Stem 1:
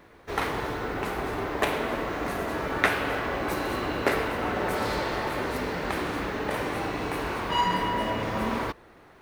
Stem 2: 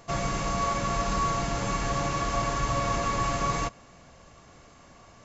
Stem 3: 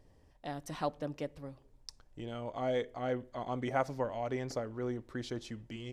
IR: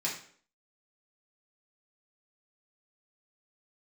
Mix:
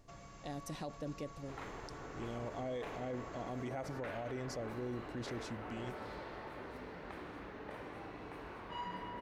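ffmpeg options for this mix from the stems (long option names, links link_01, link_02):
-filter_complex "[0:a]lowpass=frequency=2800:poles=1,adelay=1200,volume=-17.5dB[link_01];[1:a]acompressor=threshold=-36dB:ratio=2.5,volume=-18.5dB[link_02];[2:a]equalizer=frequency=1200:width=1.3:gain=-9.5,bandreject=frequency=3100:width=12,volume=-0.5dB[link_03];[link_01][link_02][link_03]amix=inputs=3:normalize=0,alimiter=level_in=9.5dB:limit=-24dB:level=0:latency=1:release=26,volume=-9.5dB"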